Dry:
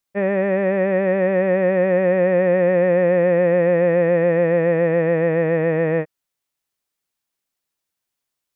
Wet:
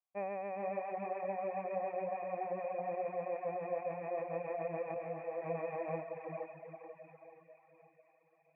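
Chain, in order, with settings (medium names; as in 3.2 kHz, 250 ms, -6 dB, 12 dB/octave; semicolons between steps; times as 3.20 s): resonant high shelf 1.6 kHz +13 dB, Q 1.5; careless resampling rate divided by 6×, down filtered, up zero stuff; cascade formant filter a; peaking EQ 92 Hz +9 dB 1 oct; feedback echo behind a high-pass 704 ms, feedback 65%, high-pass 2.3 kHz, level -18 dB; peak limiter -32.5 dBFS, peak gain reduction 6.5 dB; echo that smears into a reverb 463 ms, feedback 47%, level -3 dB; reverb removal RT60 1 s; 4.94–5.42 s: detune thickener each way 39 cents; trim +1.5 dB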